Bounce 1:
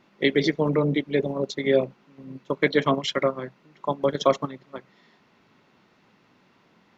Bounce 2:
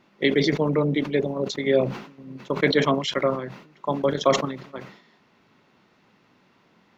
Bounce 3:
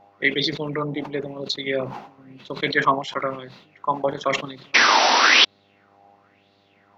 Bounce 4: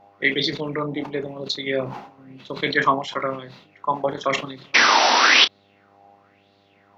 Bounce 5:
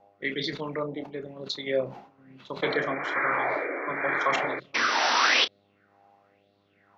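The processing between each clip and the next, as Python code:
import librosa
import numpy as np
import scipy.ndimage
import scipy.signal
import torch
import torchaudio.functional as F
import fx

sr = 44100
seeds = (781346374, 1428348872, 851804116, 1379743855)

y1 = fx.sustainer(x, sr, db_per_s=94.0)
y2 = fx.spec_paint(y1, sr, seeds[0], shape='noise', start_s=4.74, length_s=0.71, low_hz=220.0, high_hz=6000.0, level_db=-15.0)
y2 = fx.dmg_buzz(y2, sr, base_hz=100.0, harmonics=8, level_db=-57.0, tilt_db=0, odd_only=False)
y2 = fx.bell_lfo(y2, sr, hz=0.99, low_hz=770.0, high_hz=4100.0, db=16)
y2 = y2 * 10.0 ** (-6.0 / 20.0)
y3 = fx.doubler(y2, sr, ms=30.0, db=-11.5)
y4 = fx.spec_paint(y3, sr, seeds[1], shape='noise', start_s=2.62, length_s=1.98, low_hz=260.0, high_hz=2400.0, level_db=-23.0)
y4 = fx.rotary(y4, sr, hz=1.1)
y4 = fx.bell_lfo(y4, sr, hz=1.1, low_hz=510.0, high_hz=1700.0, db=8)
y4 = y4 * 10.0 ** (-6.5 / 20.0)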